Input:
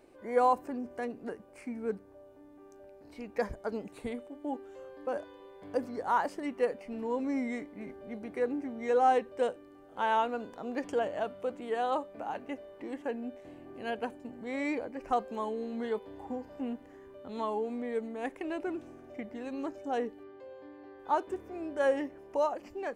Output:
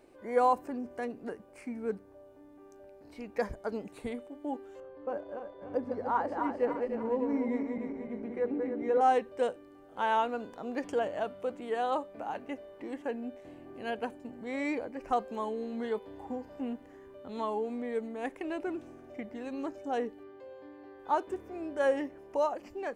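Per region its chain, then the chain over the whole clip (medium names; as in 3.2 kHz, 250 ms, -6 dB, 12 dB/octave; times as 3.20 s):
4.80–9.01 s: backward echo that repeats 149 ms, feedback 68%, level -4.5 dB + low-pass 1.1 kHz 6 dB/octave
whole clip: none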